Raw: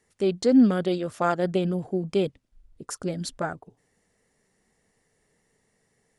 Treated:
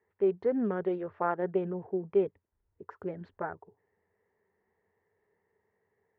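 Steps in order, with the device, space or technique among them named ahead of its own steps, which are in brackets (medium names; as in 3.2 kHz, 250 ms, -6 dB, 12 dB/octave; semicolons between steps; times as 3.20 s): bass cabinet (cabinet simulation 84–2100 Hz, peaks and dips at 89 Hz +10 dB, 140 Hz -8 dB, 260 Hz -7 dB, 410 Hz +10 dB, 930 Hz +9 dB, 1.8 kHz +4 dB); trim -9 dB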